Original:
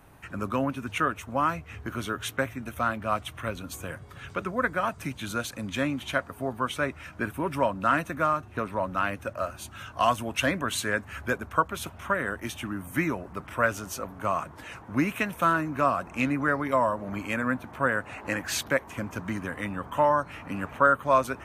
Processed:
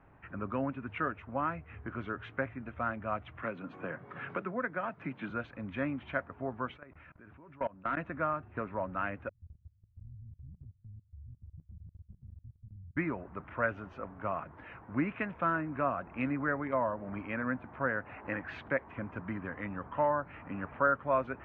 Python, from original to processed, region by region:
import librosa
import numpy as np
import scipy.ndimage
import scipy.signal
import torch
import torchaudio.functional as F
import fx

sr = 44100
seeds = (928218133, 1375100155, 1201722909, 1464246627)

y = fx.chain(x, sr, fx.highpass(hz=140.0, slope=24),
    fx.band_squash(depth_pct=70), at=(3.42, 5.3))
y = fx.chain(y, sr, fx.level_steps(step_db=24),
    fx.clip_hard(threshold_db=-18.5), at=(6.76, 7.97))
y = fx.chain(y, sr, fx.halfwave_hold(),
    fx.cheby2_lowpass(hz=510.0, order=4, stop_db=70),
    fx.level_steps(step_db=21), at=(9.29, 12.97))
y = scipy.signal.sosfilt(scipy.signal.butter(4, 2300.0, 'lowpass', fs=sr, output='sos'), y)
y = fx.dynamic_eq(y, sr, hz=1100.0, q=3.7, threshold_db=-36.0, ratio=4.0, max_db=-4)
y = F.gain(torch.from_numpy(y), -6.0).numpy()